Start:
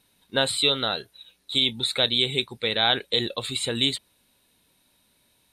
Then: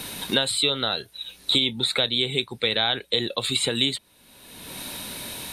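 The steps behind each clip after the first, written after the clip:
multiband upward and downward compressor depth 100%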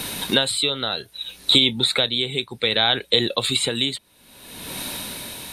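amplitude tremolo 0.64 Hz, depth 48%
level +5.5 dB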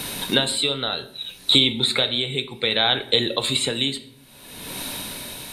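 rectangular room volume 130 cubic metres, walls mixed, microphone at 0.31 metres
level −1 dB

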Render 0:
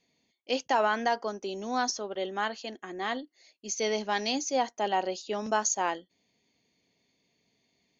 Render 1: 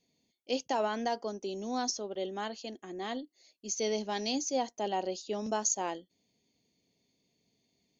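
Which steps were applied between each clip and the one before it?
parametric band 1,500 Hz −11 dB 1.9 octaves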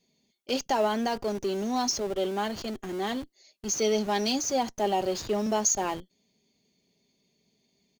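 comb filter 5 ms, depth 42%
in parallel at −10 dB: comparator with hysteresis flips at −44.5 dBFS
on the sum: level +3.5 dB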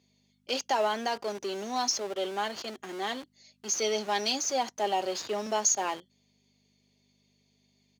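mains hum 50 Hz, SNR 23 dB
meter weighting curve A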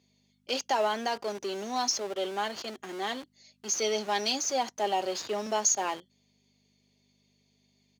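no processing that can be heard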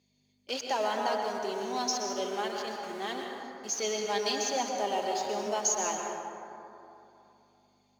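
dense smooth reverb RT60 2.9 s, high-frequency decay 0.35×, pre-delay 105 ms, DRR 1 dB
level −3.5 dB

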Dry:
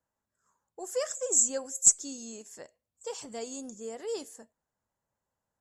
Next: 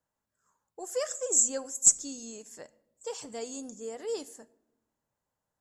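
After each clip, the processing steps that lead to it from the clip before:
rectangular room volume 3,300 cubic metres, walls furnished, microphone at 0.45 metres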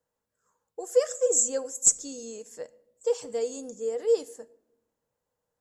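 parametric band 480 Hz +14.5 dB 0.24 octaves

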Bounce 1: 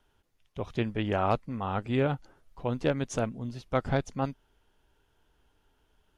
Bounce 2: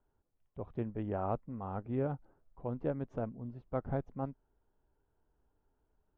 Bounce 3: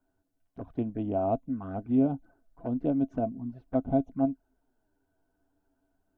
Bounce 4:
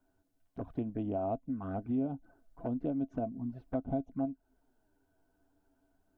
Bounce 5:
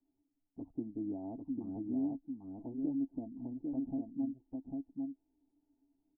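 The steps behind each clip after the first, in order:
low-pass filter 1,000 Hz 12 dB per octave; level −7 dB
flanger swept by the level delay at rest 11 ms, full sweep at −34.5 dBFS; high-shelf EQ 3,000 Hz +6 dB; hollow resonant body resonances 270/670/1,500 Hz, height 15 dB, ringing for 65 ms; level +1.5 dB
downward compressor 2.5 to 1, threshold −36 dBFS, peak gain reduction 11 dB; level +1.5 dB
formant resonators in series u; single-tap delay 798 ms −3.5 dB; level +1.5 dB

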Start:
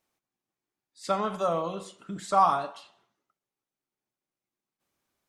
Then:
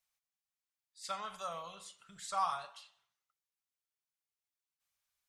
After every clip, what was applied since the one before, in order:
guitar amp tone stack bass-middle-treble 10-0-10
level −2.5 dB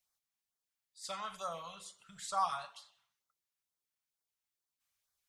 auto-filter notch sine 2.2 Hz 330–2,800 Hz
level +1.5 dB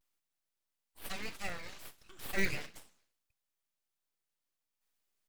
sub-harmonics by changed cycles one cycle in 3, inverted
pitch vibrato 0.85 Hz 77 cents
full-wave rectification
level +3.5 dB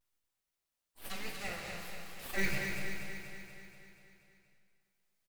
flanger 1 Hz, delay 8 ms, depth 6.2 ms, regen +65%
on a send: repeating echo 240 ms, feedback 60%, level −6 dB
on the sum: dense smooth reverb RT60 2 s, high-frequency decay 0.95×, DRR 2 dB
level +2.5 dB

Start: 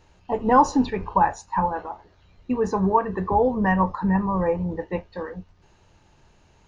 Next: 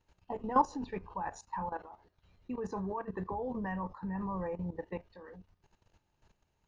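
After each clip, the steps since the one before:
output level in coarse steps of 14 dB
level −8 dB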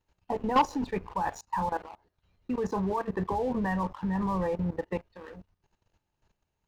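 leveller curve on the samples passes 2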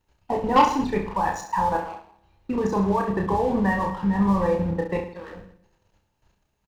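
reverse bouncing-ball delay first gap 30 ms, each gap 1.2×, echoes 5
on a send at −22 dB: convolution reverb RT60 1.4 s, pre-delay 6 ms
on the sum: level +5 dB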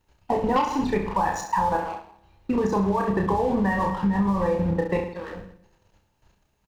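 downward compressor 12 to 1, threshold −22 dBFS, peak gain reduction 11.5 dB
level +3.5 dB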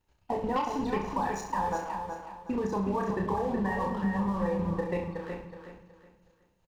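repeating echo 370 ms, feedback 30%, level −6.5 dB
level −7.5 dB

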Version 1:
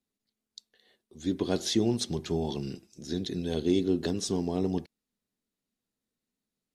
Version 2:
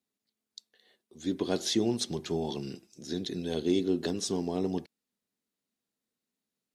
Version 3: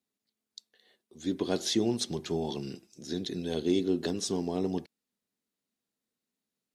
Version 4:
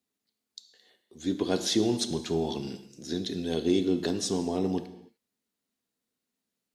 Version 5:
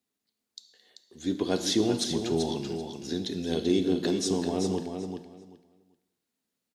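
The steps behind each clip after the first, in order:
high-pass filter 190 Hz 6 dB per octave
no processing that can be heard
reverb whose tail is shaped and stops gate 330 ms falling, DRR 9 dB; level +2 dB
repeating echo 387 ms, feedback 18%, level −7 dB

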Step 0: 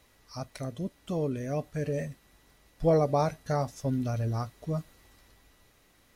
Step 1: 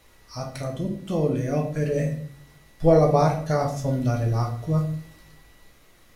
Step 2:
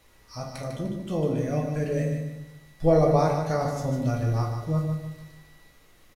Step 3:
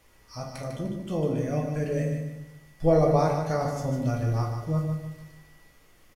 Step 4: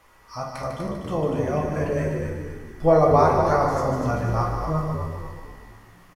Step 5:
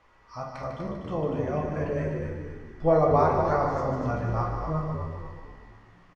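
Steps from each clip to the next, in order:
convolution reverb RT60 0.55 s, pre-delay 6 ms, DRR 0.5 dB; level +4 dB
repeating echo 150 ms, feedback 35%, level −7 dB; level −3 dB
notch filter 3,900 Hz, Q 13; level −1 dB
parametric band 1,100 Hz +11.5 dB 1.5 octaves; on a send: echo with shifted repeats 245 ms, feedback 46%, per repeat −66 Hz, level −6 dB
high-frequency loss of the air 130 metres; level −4 dB

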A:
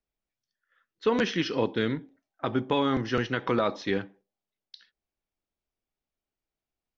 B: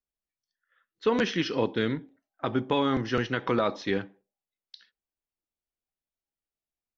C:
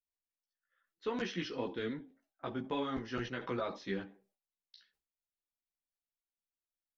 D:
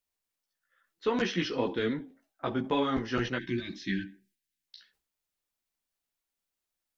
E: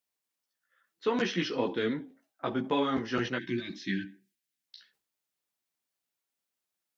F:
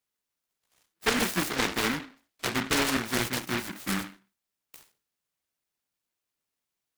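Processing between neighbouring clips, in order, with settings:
noise reduction from a noise print of the clip's start 8 dB
multi-voice chorus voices 6, 0.98 Hz, delay 14 ms, depth 3.1 ms; level that may fall only so fast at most 150 dB per second; level −8 dB
gain on a spectral selection 0:03.38–0:04.67, 380–1,500 Hz −30 dB; level +8 dB
high-pass filter 120 Hz 12 dB per octave
short delay modulated by noise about 1,500 Hz, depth 0.43 ms; level +2 dB

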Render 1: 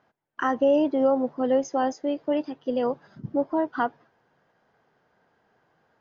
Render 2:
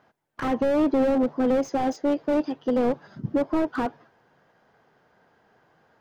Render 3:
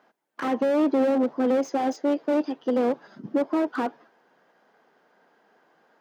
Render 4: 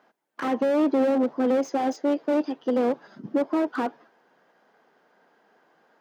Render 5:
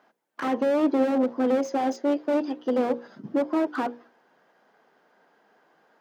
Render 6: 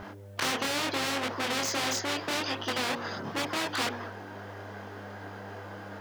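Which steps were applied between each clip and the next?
slew-rate limiting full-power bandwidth 28 Hz; level +5 dB
high-pass filter 210 Hz 24 dB per octave
no processing that can be heard
mains-hum notches 60/120/180/240/300/360/420/480/540 Hz
hum with harmonics 100 Hz, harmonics 6, −59 dBFS −8 dB per octave; multi-voice chorus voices 2, 0.76 Hz, delay 25 ms, depth 3.4 ms; every bin compressed towards the loudest bin 4 to 1

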